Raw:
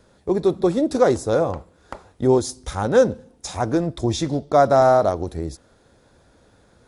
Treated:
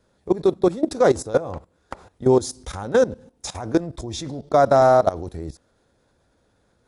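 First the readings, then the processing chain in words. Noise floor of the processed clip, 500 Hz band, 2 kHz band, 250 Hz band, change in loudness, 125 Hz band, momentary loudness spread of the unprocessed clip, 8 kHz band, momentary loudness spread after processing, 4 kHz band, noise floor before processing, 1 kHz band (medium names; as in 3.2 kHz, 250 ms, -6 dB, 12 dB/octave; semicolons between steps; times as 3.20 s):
-65 dBFS, -0.5 dB, -0.5 dB, -2.0 dB, -0.5 dB, -3.0 dB, 14 LU, -1.0 dB, 19 LU, -1.5 dB, -57 dBFS, -0.5 dB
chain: level held to a coarse grid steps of 17 dB; trim +3.5 dB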